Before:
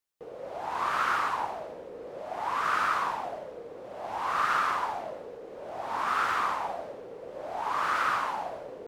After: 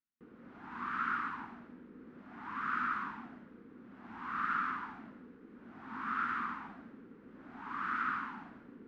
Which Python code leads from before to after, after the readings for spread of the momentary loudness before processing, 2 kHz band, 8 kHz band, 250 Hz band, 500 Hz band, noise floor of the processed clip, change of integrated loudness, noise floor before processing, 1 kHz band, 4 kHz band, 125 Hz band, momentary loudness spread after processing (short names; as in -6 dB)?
16 LU, -6.5 dB, under -25 dB, +1.5 dB, -21.5 dB, -57 dBFS, -7.5 dB, -44 dBFS, -10.0 dB, -16.5 dB, -4.0 dB, 20 LU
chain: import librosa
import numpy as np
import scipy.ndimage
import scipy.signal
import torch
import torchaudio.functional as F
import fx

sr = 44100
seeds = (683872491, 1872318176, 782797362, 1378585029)

y = fx.curve_eq(x, sr, hz=(140.0, 240.0, 590.0, 1400.0, 14000.0), db=(0, 15, -23, 3, -29))
y = F.gain(torch.from_numpy(y), -7.5).numpy()